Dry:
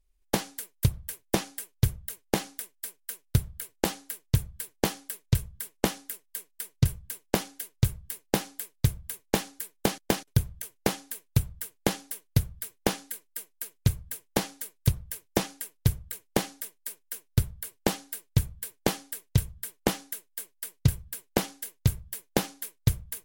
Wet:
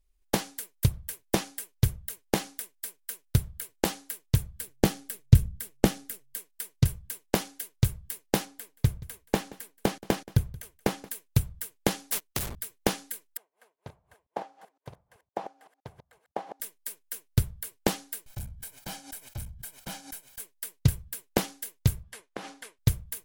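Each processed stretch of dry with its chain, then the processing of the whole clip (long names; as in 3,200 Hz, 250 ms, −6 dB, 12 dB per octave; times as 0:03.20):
0:04.60–0:06.37: low-shelf EQ 290 Hz +10.5 dB + notch filter 1,000 Hz, Q 9.4 + amplitude modulation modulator 130 Hz, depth 15%
0:08.45–0:11.09: high-shelf EQ 2,900 Hz −7 dB + single-tap delay 177 ms −21 dB
0:12.12–0:12.56: downward compressor 4 to 1, threshold −28 dBFS + leveller curve on the samples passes 5 + every bin compressed towards the loudest bin 2 to 1
0:13.37–0:16.60: delay that plays each chunk backwards 128 ms, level −9.5 dB + resonant band-pass 770 Hz, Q 2.5
0:18.26–0:20.40: tube saturation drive 36 dB, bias 0.45 + comb filter 1.3 ms, depth 58% + background raised ahead of every attack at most 130 dB per second
0:22.03–0:22.79: Butterworth low-pass 12,000 Hz + downward compressor 16 to 1, threshold −33 dBFS + mid-hump overdrive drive 14 dB, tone 1,400 Hz, clips at −14.5 dBFS
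whole clip: no processing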